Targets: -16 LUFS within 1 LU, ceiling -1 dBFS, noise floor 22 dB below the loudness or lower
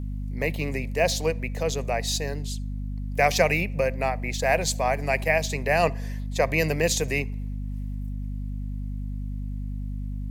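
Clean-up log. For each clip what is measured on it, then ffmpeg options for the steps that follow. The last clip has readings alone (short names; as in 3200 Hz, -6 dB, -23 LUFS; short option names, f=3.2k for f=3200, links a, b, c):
hum 50 Hz; harmonics up to 250 Hz; hum level -28 dBFS; loudness -26.5 LUFS; peak -6.0 dBFS; loudness target -16.0 LUFS
-> -af "bandreject=f=50:t=h:w=6,bandreject=f=100:t=h:w=6,bandreject=f=150:t=h:w=6,bandreject=f=200:t=h:w=6,bandreject=f=250:t=h:w=6"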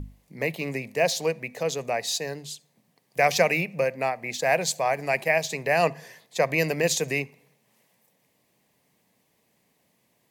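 hum none; loudness -25.5 LUFS; peak -7.0 dBFS; loudness target -16.0 LUFS
-> -af "volume=9.5dB,alimiter=limit=-1dB:level=0:latency=1"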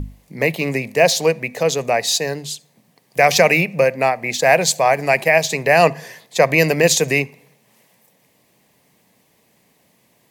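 loudness -16.5 LUFS; peak -1.0 dBFS; noise floor -60 dBFS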